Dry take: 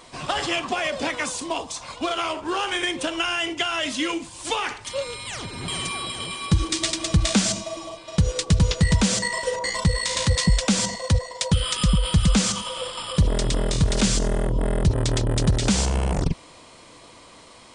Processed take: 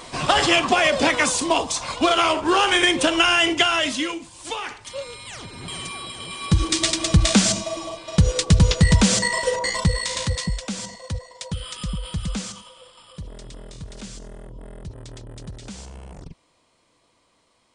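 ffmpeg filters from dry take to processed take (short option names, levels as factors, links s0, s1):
-af "volume=5.62,afade=t=out:st=3.56:d=0.6:silence=0.266073,afade=t=in:st=6.23:d=0.49:silence=0.421697,afade=t=out:st=9.47:d=1.13:silence=0.237137,afade=t=out:st=12.36:d=0.4:silence=0.398107"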